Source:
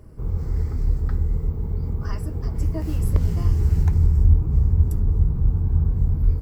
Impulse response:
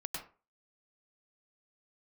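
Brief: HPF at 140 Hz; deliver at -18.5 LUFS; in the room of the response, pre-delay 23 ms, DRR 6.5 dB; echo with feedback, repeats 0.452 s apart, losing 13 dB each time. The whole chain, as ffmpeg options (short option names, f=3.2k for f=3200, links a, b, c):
-filter_complex "[0:a]highpass=140,aecho=1:1:452|904|1356:0.224|0.0493|0.0108,asplit=2[a][b];[1:a]atrim=start_sample=2205,adelay=23[c];[b][c]afir=irnorm=-1:irlink=0,volume=-7dB[d];[a][d]amix=inputs=2:normalize=0,volume=11.5dB"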